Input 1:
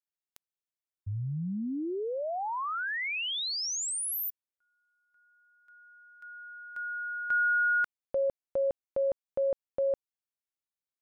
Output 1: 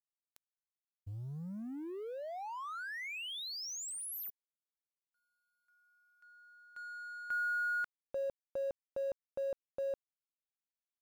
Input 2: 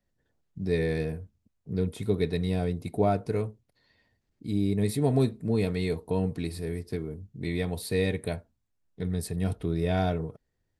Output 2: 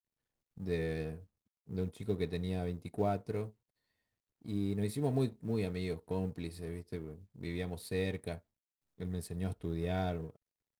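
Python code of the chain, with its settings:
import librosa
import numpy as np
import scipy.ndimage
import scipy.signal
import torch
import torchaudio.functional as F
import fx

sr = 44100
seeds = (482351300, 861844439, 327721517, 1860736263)

y = fx.law_mismatch(x, sr, coded='A')
y = y * 10.0 ** (-7.5 / 20.0)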